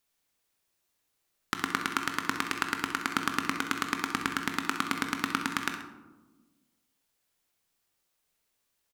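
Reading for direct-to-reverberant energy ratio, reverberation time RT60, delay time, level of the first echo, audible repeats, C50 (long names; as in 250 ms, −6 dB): 4.0 dB, 1.2 s, 64 ms, −11.5 dB, 1, 6.0 dB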